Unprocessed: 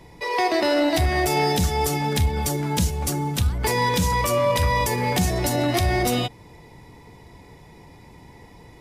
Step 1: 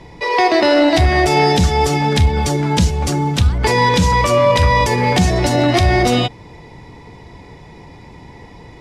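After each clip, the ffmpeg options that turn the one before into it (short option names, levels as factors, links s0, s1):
-af "lowpass=6000,volume=2.51"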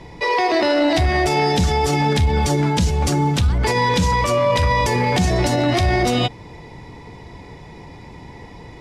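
-af "alimiter=limit=0.316:level=0:latency=1:release=31"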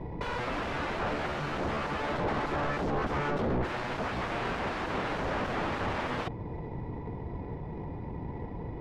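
-af "aeval=exprs='0.0631*(abs(mod(val(0)/0.0631+3,4)-2)-1)':c=same,adynamicsmooth=sensitivity=1:basefreq=910,volume=1.19"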